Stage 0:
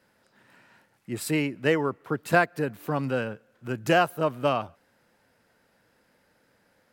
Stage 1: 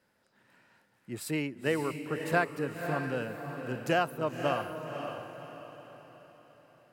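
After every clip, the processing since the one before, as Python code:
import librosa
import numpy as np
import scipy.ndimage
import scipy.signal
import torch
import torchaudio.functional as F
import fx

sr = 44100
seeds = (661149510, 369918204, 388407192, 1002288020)

y = fx.echo_diffused(x, sr, ms=551, feedback_pct=42, wet_db=-6.5)
y = F.gain(torch.from_numpy(y), -6.5).numpy()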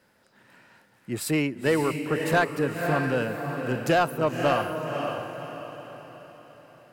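y = 10.0 ** (-22.0 / 20.0) * np.tanh(x / 10.0 ** (-22.0 / 20.0))
y = F.gain(torch.from_numpy(y), 8.5).numpy()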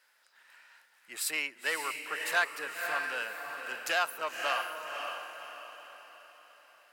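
y = scipy.signal.sosfilt(scipy.signal.butter(2, 1300.0, 'highpass', fs=sr, output='sos'), x)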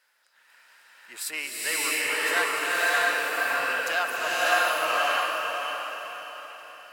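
y = fx.hum_notches(x, sr, base_hz=50, count=3)
y = fx.rev_bloom(y, sr, seeds[0], attack_ms=650, drr_db=-8.0)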